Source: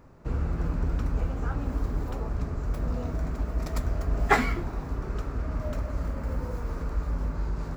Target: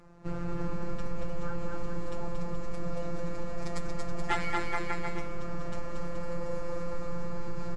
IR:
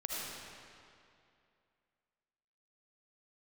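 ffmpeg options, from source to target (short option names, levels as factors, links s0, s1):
-af "afftfilt=real='hypot(re,im)*cos(PI*b)':imag='0':win_size=1024:overlap=0.75,aecho=1:1:230|425.5|591.7|732.9|853:0.631|0.398|0.251|0.158|0.1,volume=5.96,asoftclip=hard,volume=0.168,acompressor=threshold=0.0562:ratio=6,volume=1.33" -ar 22050 -c:a libvorbis -b:a 64k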